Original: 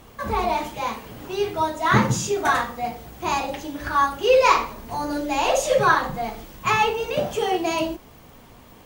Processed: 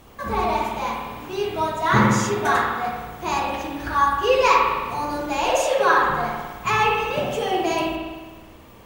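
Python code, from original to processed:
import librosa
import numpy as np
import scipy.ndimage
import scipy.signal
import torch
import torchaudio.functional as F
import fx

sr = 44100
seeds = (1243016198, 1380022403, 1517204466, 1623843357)

y = fx.highpass(x, sr, hz=fx.line((5.5, 450.0), (5.95, 190.0)), slope=24, at=(5.5, 5.95), fade=0.02)
y = fx.rev_spring(y, sr, rt60_s=1.4, pass_ms=(53,), chirp_ms=65, drr_db=0.0)
y = F.gain(torch.from_numpy(y), -1.5).numpy()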